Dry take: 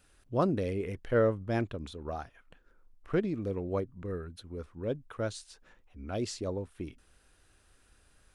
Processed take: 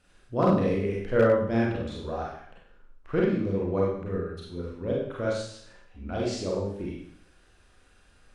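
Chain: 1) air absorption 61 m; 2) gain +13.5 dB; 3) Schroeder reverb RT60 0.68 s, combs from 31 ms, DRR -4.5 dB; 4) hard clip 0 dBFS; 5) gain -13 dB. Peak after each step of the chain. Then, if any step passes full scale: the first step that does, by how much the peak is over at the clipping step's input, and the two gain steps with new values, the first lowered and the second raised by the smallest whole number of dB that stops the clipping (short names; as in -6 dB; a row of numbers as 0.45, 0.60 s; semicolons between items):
-15.5, -2.0, +5.0, 0.0, -13.0 dBFS; step 3, 5.0 dB; step 2 +8.5 dB, step 5 -8 dB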